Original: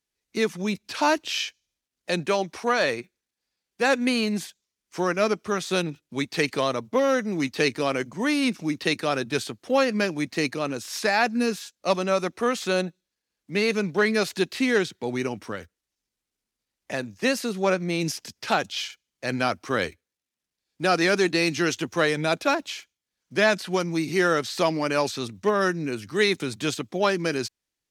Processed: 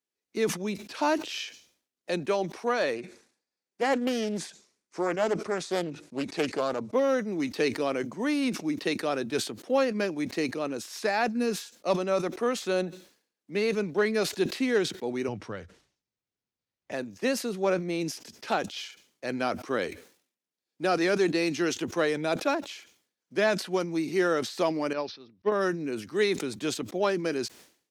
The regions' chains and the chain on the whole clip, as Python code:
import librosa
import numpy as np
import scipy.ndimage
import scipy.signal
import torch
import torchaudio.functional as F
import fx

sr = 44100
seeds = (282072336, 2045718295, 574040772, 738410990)

y = fx.chain(x, sr, fx.lowpass(hz=10000.0, slope=24),
    fx.peak_eq(hz=3100.0, db=-5.5, octaves=0.41),
    fx.doppler_dist(depth_ms=0.38), at=(2.95, 6.92))
y = fx.chain(y, sr, fx.lowpass(hz=6300.0, slope=12),
    fx.low_shelf_res(hz=180.0, db=10.0, q=1.5), at=(15.28, 16.92))
y = fx.chain(y, sr, fx.steep_lowpass(hz=5500.0, slope=72),
    fx.upward_expand(threshold_db=-36.0, expansion=2.5), at=(24.93, 25.52))
y = fx.highpass(y, sr, hz=240.0, slope=6)
y = fx.peak_eq(y, sr, hz=340.0, db=7.5, octaves=2.6)
y = fx.sustainer(y, sr, db_per_s=120.0)
y = y * 10.0 ** (-8.0 / 20.0)